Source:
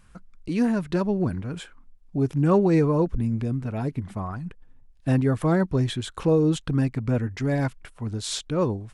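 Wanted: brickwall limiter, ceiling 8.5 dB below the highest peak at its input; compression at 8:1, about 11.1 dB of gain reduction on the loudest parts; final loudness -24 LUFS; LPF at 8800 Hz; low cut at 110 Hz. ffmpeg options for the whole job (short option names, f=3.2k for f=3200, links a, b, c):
-af "highpass=110,lowpass=8.8k,acompressor=threshold=-28dB:ratio=8,volume=12dB,alimiter=limit=-14.5dB:level=0:latency=1"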